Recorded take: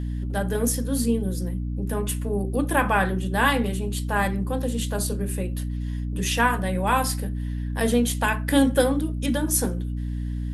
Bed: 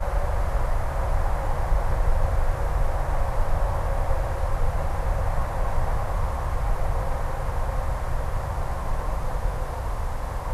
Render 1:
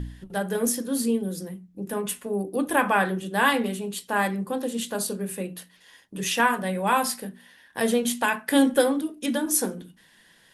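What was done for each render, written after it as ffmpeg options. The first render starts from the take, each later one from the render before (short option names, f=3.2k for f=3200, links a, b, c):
-af "bandreject=f=60:t=h:w=4,bandreject=f=120:t=h:w=4,bandreject=f=180:t=h:w=4,bandreject=f=240:t=h:w=4,bandreject=f=300:t=h:w=4"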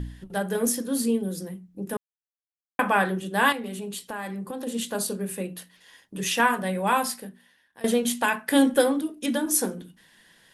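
-filter_complex "[0:a]asettb=1/sr,asplit=3[a][b][c];[a]atrim=end=3.524[d];[b]atrim=start=3.52:end=4.67,asetpts=PTS-STARTPTS,afade=t=in:d=0.004:c=qsin,afade=t=out:st=1.146:d=0.004:c=qsin,acompressor=threshold=-30dB:ratio=5:attack=3.2:release=140:knee=1:detection=peak[e];[c]atrim=start=4.666[f];[d][e]acrossfade=d=0.004:c1=hsin:c2=qsin[g];[g][f]acrossfade=d=0.004:c1=qsin:c2=hsin,asplit=4[h][i][j][k];[h]atrim=end=1.97,asetpts=PTS-STARTPTS,afade=t=out:st=1.966:d=0.004:c=hsin[l];[i]atrim=start=1.97:end=2.79,asetpts=PTS-STARTPTS,volume=0[m];[j]atrim=start=2.79:end=7.84,asetpts=PTS-STARTPTS,afade=t=in:d=0.004:c=hsin,afade=t=out:st=4.06:d=0.99:silence=0.0944061[n];[k]atrim=start=7.84,asetpts=PTS-STARTPTS,afade=t=in:d=0.004:c=hsin:silence=0.0944061[o];[l][m][n][o]concat=n=4:v=0:a=1"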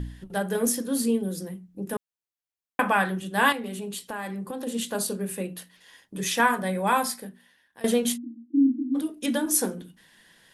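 -filter_complex "[0:a]asettb=1/sr,asplit=3[a][b][c];[a]atrim=end=2.934[d];[b]atrim=start=2.93:end=3.38,asetpts=PTS-STARTPTS,afade=t=in:d=0.004:c=qsin,afade=t=out:st=0.446:d=0.004:c=qsin,equalizer=f=430:w=1.5:g=-6[e];[c]atrim=start=3.376[f];[d][e]acrossfade=d=0.004:c1=hsin:c2=qsin[g];[g][f]acrossfade=d=0.004:c1=qsin:c2=hsin,asettb=1/sr,asplit=3[h][i][j];[h]atrim=end=6.164[k];[i]atrim=start=6.16:end=7.26,asetpts=PTS-STARTPTS,afade=t=in:d=0.004:c=qsin,afade=t=out:st=1.096:d=0.004:c=qsin,bandreject=f=2.8k:w=7.9[l];[j]atrim=start=7.256[m];[k][l]acrossfade=d=0.004:c1=hsin:c2=qsin[n];[n][m]acrossfade=d=0.004:c1=qsin:c2=hsin,asplit=3[o][p][q];[o]afade=t=out:st=8.16:d=0.02[r];[p]asuperpass=centerf=280:order=20:qfactor=2.5,afade=t=in:st=8.16:d=0.02,afade=t=out:st=8.94:d=0.02[s];[q]afade=t=in:st=8.94:d=0.02[t];[r][s][t]amix=inputs=3:normalize=0"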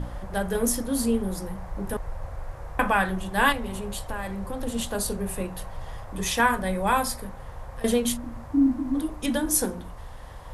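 -filter_complex "[1:a]volume=-12.5dB[a];[0:a][a]amix=inputs=2:normalize=0"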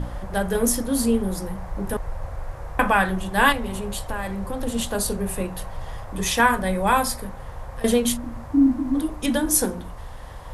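-af "volume=3.5dB"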